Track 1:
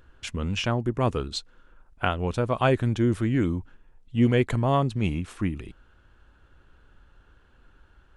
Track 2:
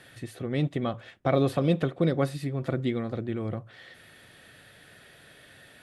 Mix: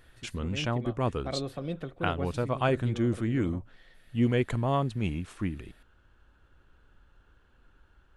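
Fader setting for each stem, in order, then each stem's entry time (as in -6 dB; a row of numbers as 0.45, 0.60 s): -4.5, -11.0 dB; 0.00, 0.00 s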